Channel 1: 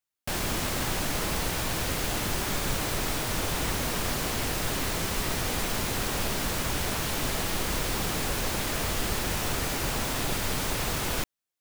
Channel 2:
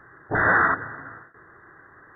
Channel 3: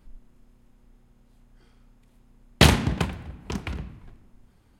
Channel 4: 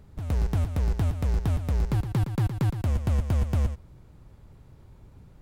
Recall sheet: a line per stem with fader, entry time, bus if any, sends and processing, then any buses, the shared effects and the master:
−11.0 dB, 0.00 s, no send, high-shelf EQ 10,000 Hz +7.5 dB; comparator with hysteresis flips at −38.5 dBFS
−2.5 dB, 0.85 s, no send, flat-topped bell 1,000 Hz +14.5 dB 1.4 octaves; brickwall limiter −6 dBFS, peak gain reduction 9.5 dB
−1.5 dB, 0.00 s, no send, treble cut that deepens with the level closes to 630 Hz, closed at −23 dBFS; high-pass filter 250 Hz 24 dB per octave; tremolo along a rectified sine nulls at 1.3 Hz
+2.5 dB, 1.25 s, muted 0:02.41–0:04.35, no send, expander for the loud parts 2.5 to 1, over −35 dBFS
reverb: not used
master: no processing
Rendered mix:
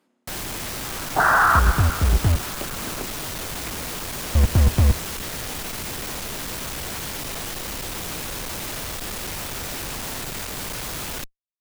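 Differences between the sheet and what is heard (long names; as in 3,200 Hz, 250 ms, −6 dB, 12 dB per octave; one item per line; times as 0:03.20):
stem 1 −11.0 dB → −3.0 dB
stem 4 +2.5 dB → +9.0 dB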